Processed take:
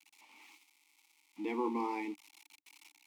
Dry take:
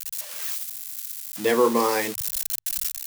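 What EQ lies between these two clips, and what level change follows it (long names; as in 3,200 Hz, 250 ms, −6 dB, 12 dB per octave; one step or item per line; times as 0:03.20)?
formant filter u
high-pass filter 150 Hz 24 dB per octave
0.0 dB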